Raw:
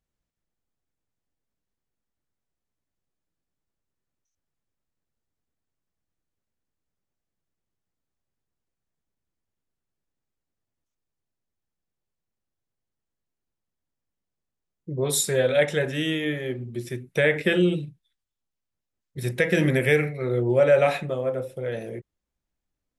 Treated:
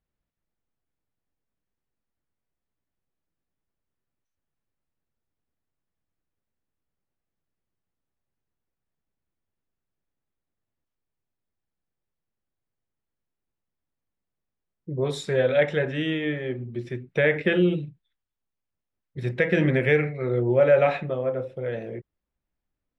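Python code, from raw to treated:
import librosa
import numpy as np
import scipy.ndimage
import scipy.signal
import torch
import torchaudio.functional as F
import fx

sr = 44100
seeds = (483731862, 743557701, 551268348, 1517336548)

y = scipy.signal.sosfilt(scipy.signal.butter(2, 2900.0, 'lowpass', fs=sr, output='sos'), x)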